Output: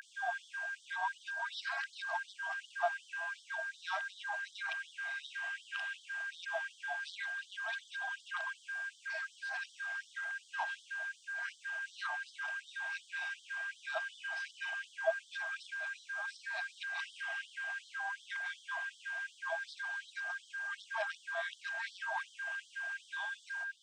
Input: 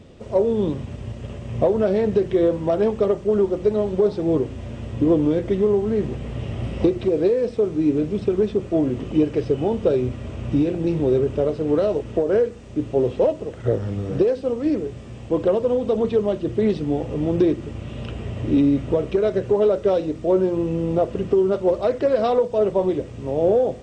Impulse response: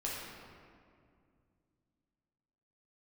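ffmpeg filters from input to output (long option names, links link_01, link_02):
-filter_complex "[0:a]areverse,aeval=exprs='val(0)+0.02*sin(2*PI*1600*n/s)':channel_layout=same,asplit=2[link_01][link_02];[link_02]asuperstop=centerf=1400:order=20:qfactor=1.3[link_03];[1:a]atrim=start_sample=2205,asetrate=23373,aresample=44100[link_04];[link_03][link_04]afir=irnorm=-1:irlink=0,volume=-24dB[link_05];[link_01][link_05]amix=inputs=2:normalize=0,afftfilt=real='re*gte(b*sr/1024,630*pow(3100/630,0.5+0.5*sin(2*PI*2.7*pts/sr)))':imag='im*gte(b*sr/1024,630*pow(3100/630,0.5+0.5*sin(2*PI*2.7*pts/sr)))':win_size=1024:overlap=0.75,volume=-3dB"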